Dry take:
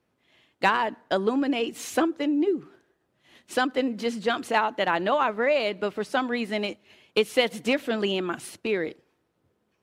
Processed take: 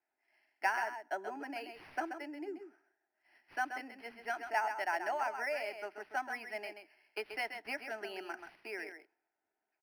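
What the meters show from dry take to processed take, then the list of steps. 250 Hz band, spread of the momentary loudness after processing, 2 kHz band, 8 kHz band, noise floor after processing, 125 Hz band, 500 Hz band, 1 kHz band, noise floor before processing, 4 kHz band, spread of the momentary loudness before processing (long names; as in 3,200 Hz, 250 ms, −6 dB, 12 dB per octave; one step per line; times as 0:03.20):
−22.0 dB, 12 LU, −8.5 dB, −15.0 dB, below −85 dBFS, below −30 dB, −16.5 dB, −10.0 dB, −73 dBFS, −18.5 dB, 7 LU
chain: high-pass filter 270 Hz 6 dB per octave
three-way crossover with the lows and the highs turned down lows −18 dB, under 500 Hz, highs −14 dB, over 4,200 Hz
phaser with its sweep stopped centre 760 Hz, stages 8
single-tap delay 132 ms −8 dB
linearly interpolated sample-rate reduction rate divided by 6×
level −6 dB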